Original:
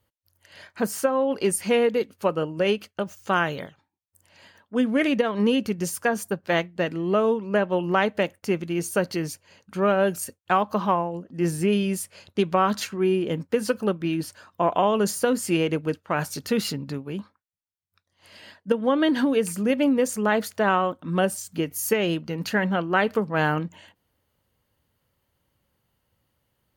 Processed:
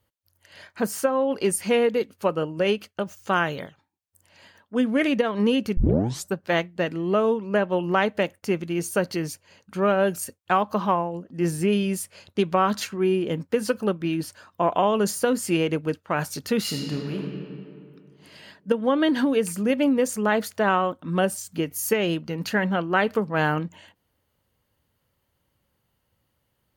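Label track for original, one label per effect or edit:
5.770000	5.770000	tape start 0.57 s
16.610000	17.180000	thrown reverb, RT60 2.5 s, DRR −0.5 dB

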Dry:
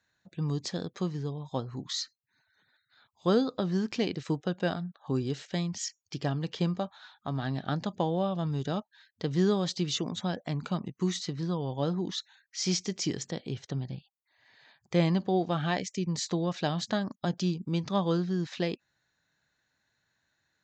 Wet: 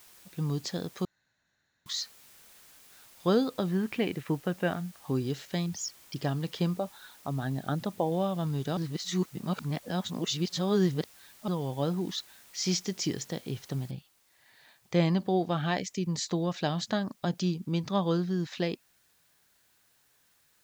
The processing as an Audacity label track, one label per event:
1.050000	1.860000	fill with room tone
3.710000	4.980000	high shelf with overshoot 3,600 Hz −12.5 dB, Q 1.5
5.660000	6.160000	spectral envelope exaggerated exponent 2
6.760000	8.120000	spectral envelope exaggerated exponent 1.5
8.770000	11.480000	reverse
13.910000	13.910000	noise floor change −56 dB −68 dB

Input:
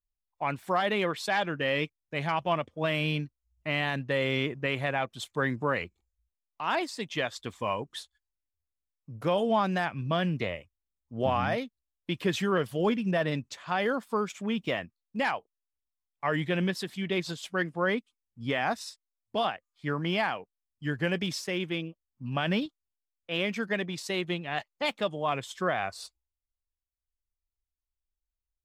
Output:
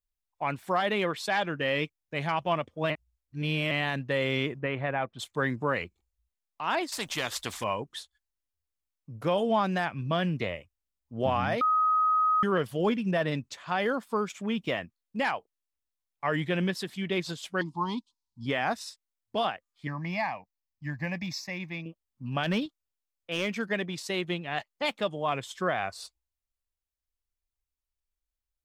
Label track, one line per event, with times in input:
2.900000	3.710000	reverse
4.590000	5.190000	low-pass filter 2,100 Hz
6.920000	7.640000	every bin compressed towards the loudest bin 2 to 1
11.610000	12.430000	beep over 1,260 Hz −21 dBFS
17.610000	18.460000	drawn EQ curve 320 Hz 0 dB, 560 Hz −26 dB, 950 Hz +13 dB, 1,600 Hz −28 dB, 4,200 Hz +9 dB, 6,000 Hz +5 dB, 13,000 Hz −9 dB
19.870000	21.860000	phaser with its sweep stopped centre 2,100 Hz, stages 8
22.430000	23.700000	gain into a clipping stage and back gain 20.5 dB

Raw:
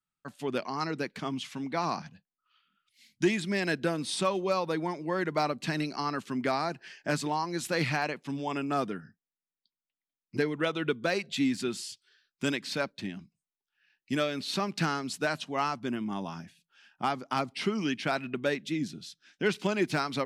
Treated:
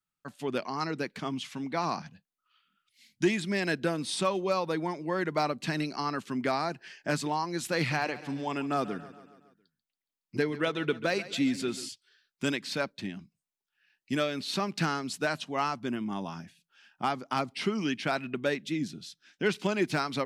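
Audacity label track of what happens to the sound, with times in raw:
7.770000	11.890000	repeating echo 139 ms, feedback 57%, level −16 dB

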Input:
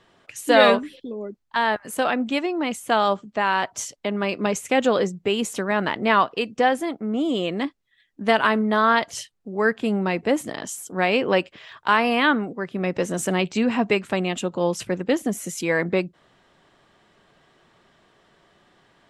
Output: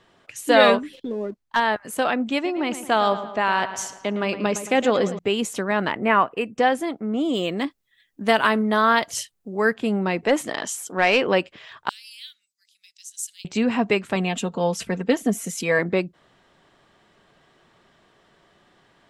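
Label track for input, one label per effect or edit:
0.930000	1.600000	leveller curve on the samples passes 1
2.340000	5.190000	feedback echo with a low-pass in the loop 111 ms, feedback 54%, low-pass 4,100 Hz, level −12 dB
5.920000	6.580000	flat-topped bell 4,500 Hz −15.5 dB 1.1 octaves
7.330000	9.740000	high-shelf EQ 8,200 Hz +12 dB
10.250000	11.270000	mid-hump overdrive drive 11 dB, tone 5,800 Hz, clips at −6 dBFS
11.890000	13.450000	inverse Chebyshev high-pass filter stop band from 1,000 Hz, stop band 70 dB
14.150000	15.790000	comb filter 4.4 ms, depth 56%

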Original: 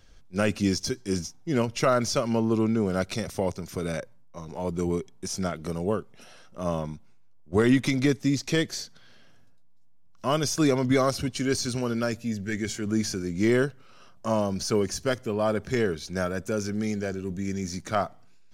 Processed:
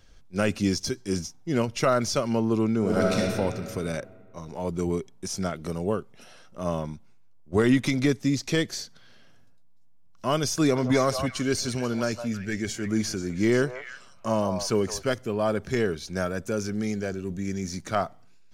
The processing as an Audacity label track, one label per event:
2.780000	3.190000	thrown reverb, RT60 2.2 s, DRR −2.5 dB
10.440000	15.070000	echo through a band-pass that steps 162 ms, band-pass from 810 Hz, each repeat 1.4 octaves, level −4.5 dB

